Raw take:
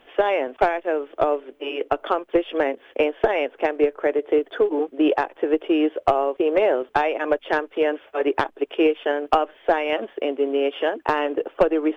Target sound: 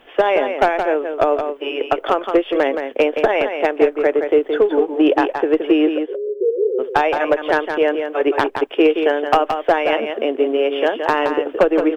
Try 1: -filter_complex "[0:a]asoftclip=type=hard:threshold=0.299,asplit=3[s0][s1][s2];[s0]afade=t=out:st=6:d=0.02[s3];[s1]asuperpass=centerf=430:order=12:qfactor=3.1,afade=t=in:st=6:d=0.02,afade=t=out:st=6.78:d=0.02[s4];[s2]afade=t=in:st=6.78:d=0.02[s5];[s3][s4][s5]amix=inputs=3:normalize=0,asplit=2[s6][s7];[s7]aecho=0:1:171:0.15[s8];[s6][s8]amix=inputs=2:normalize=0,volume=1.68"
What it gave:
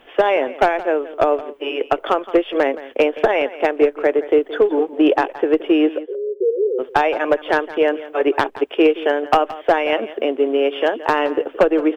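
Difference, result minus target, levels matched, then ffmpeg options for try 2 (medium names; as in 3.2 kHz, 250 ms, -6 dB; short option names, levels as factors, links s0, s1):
echo-to-direct -9.5 dB
-filter_complex "[0:a]asoftclip=type=hard:threshold=0.299,asplit=3[s0][s1][s2];[s0]afade=t=out:st=6:d=0.02[s3];[s1]asuperpass=centerf=430:order=12:qfactor=3.1,afade=t=in:st=6:d=0.02,afade=t=out:st=6.78:d=0.02[s4];[s2]afade=t=in:st=6.78:d=0.02[s5];[s3][s4][s5]amix=inputs=3:normalize=0,asplit=2[s6][s7];[s7]aecho=0:1:171:0.447[s8];[s6][s8]amix=inputs=2:normalize=0,volume=1.68"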